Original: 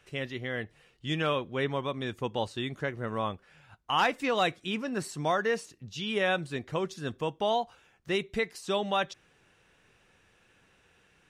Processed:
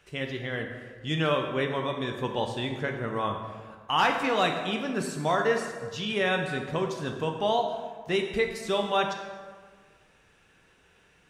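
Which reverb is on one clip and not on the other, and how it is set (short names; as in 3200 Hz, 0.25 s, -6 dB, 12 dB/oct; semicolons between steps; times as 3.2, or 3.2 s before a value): plate-style reverb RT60 1.6 s, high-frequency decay 0.6×, DRR 3 dB; gain +1 dB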